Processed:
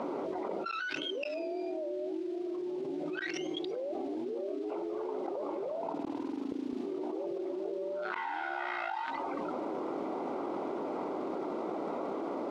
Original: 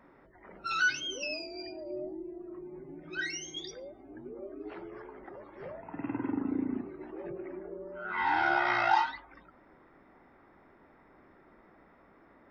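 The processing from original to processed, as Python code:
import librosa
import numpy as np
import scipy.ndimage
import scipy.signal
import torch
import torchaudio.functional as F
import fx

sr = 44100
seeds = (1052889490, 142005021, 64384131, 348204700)

y = fx.wiener(x, sr, points=25)
y = fx.mod_noise(y, sr, seeds[0], snr_db=22)
y = scipy.signal.sosfilt(scipy.signal.cheby1(2, 1.0, [350.0, 3600.0], 'bandpass', fs=sr, output='sos'), y)
y = fx.gate_flip(y, sr, shuts_db=-29.0, range_db=-27)
y = fx.dynamic_eq(y, sr, hz=670.0, q=1.2, threshold_db=-55.0, ratio=4.0, max_db=3)
y = fx.env_flatten(y, sr, amount_pct=100)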